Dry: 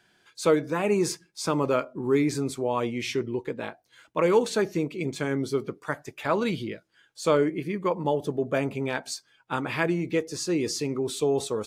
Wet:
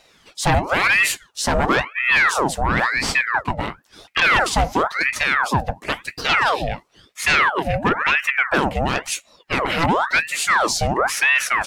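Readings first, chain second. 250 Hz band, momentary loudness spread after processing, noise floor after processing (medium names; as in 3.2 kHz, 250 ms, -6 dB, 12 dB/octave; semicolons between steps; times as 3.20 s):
0.0 dB, 10 LU, -56 dBFS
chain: sine folder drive 9 dB, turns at -9.5 dBFS; ring modulator with a swept carrier 1.3 kHz, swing 75%, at 0.97 Hz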